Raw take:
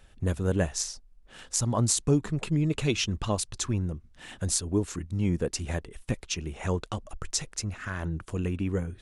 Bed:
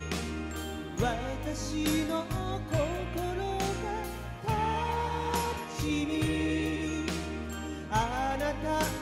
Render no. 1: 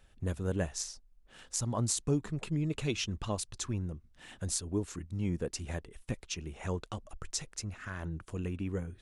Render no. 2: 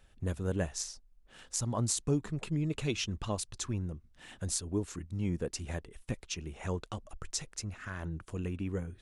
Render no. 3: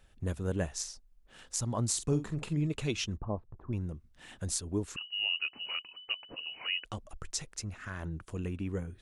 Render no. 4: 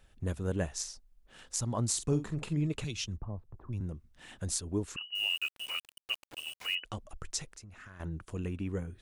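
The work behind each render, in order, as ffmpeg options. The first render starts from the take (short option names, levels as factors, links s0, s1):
-af "volume=0.473"
-af anull
-filter_complex "[0:a]asettb=1/sr,asplit=3[s0][s1][s2];[s0]atrim=end=1.894[s3];[s1]atrim=start=1.89:end=2.67,asetpts=PTS-STARTPTS,afade=t=in:d=0.004:c=qsin,afade=t=out:st=0.776:d=0.004:c=qsin,asplit=2[s4][s5];[s5]adelay=47,volume=0.316[s6];[s4][s6]amix=inputs=2:normalize=0,atrim=end_sample=34398[s7];[s2]atrim=start=2.666[s8];[s3][s7]acrossfade=d=0.004:c1=hsin:c2=qsin[s9];[s9][s8]acrossfade=d=0.004:c1=qsin:c2=hsin,asettb=1/sr,asplit=3[s10][s11][s12];[s10]atrim=end=3.174[s13];[s11]atrim=start=3.17:end=3.73,asetpts=PTS-STARTPTS,afade=t=in:d=0.004:c=qsin,afade=t=out:st=0.556:d=0.004:c=qsin,lowpass=f=1000:w=0.5412,lowpass=f=1000:w=1.3066[s14];[s12]atrim=start=3.726[s15];[s13][s14]acrossfade=d=0.004:c1=hsin:c2=qsin[s16];[s16][s15]acrossfade=d=0.004:c1=qsin:c2=hsin,asettb=1/sr,asplit=3[s17][s18][s19];[s17]atrim=end=4.964[s20];[s18]atrim=start=4.96:end=6.85,asetpts=PTS-STARTPTS,afade=t=in:d=0.004:c=qsin,afade=t=out:st=1.886:d=0.004:c=qsin,lowpass=f=2600:t=q:w=0.5098,lowpass=f=2600:t=q:w=0.6013,lowpass=f=2600:t=q:w=0.9,lowpass=f=2600:t=q:w=2.563,afreqshift=-3000[s21];[s19]atrim=start=6.846[s22];[s20][s21]acrossfade=d=0.004:c1=hsin:c2=qsin[s23];[s23][s22]acrossfade=d=0.004:c1=qsin:c2=hsin"
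-filter_complex "[0:a]asettb=1/sr,asplit=3[s0][s1][s2];[s0]atrim=end=2.844[s3];[s1]atrim=start=2.84:end=3.81,asetpts=PTS-STARTPTS,afade=t=in:d=0.004:c=qsin,afade=t=out:st=0.966:d=0.004:c=qsin,acrossover=split=160|3000[s4][s5][s6];[s5]acompressor=threshold=0.00282:ratio=2:attack=3.2:release=140:knee=2.83:detection=peak[s7];[s4][s7][s6]amix=inputs=3:normalize=0[s8];[s2]atrim=start=3.806[s9];[s3][s8]acrossfade=d=0.004:c1=hsin:c2=qsin[s10];[s10][s9]acrossfade=d=0.004:c1=qsin:c2=hsin,asettb=1/sr,asplit=3[s11][s12][s13];[s11]atrim=end=5.154[s14];[s12]atrim=start=5.15:end=6.75,asetpts=PTS-STARTPTS,afade=t=in:d=0.004:c=qsin,afade=t=out:st=1.596:d=0.004:c=qsin,aeval=exprs='val(0)*gte(abs(val(0)),0.00794)':c=same[s15];[s13]atrim=start=6.746[s16];[s14][s15]acrossfade=d=0.004:c1=hsin:c2=qsin[s17];[s17][s16]acrossfade=d=0.004:c1=qsin:c2=hsin,asettb=1/sr,asplit=3[s18][s19][s20];[s18]atrim=end=7.524[s21];[s19]atrim=start=7.52:end=8,asetpts=PTS-STARTPTS,afade=t=in:d=0.004:c=qsin,afade=t=out:st=0.476:d=0.004:c=qsin,acompressor=threshold=0.00447:ratio=6:attack=3.2:release=140:knee=1:detection=peak[s22];[s20]atrim=start=7.996[s23];[s21][s22]acrossfade=d=0.004:c1=hsin:c2=qsin[s24];[s24][s23]acrossfade=d=0.004:c1=qsin:c2=hsin"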